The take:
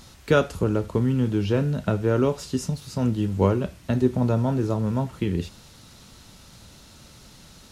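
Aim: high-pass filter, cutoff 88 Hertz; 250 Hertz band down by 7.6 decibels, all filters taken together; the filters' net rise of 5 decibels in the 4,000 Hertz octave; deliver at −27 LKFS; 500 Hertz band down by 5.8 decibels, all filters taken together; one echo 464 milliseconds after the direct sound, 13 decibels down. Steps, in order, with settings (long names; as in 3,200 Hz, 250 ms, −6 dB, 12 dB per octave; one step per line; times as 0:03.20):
high-pass filter 88 Hz
parametric band 250 Hz −8.5 dB
parametric band 500 Hz −4.5 dB
parametric band 4,000 Hz +6.5 dB
single-tap delay 464 ms −13 dB
level +1.5 dB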